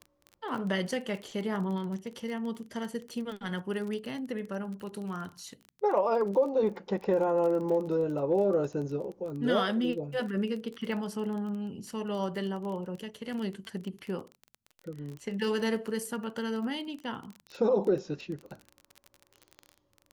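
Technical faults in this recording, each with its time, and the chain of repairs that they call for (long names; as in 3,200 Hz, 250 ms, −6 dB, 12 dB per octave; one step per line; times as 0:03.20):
surface crackle 23 per second −36 dBFS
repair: click removal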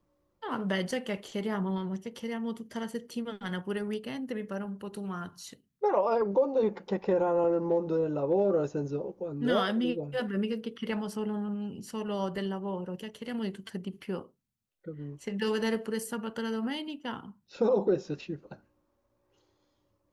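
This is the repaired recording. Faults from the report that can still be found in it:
none of them is left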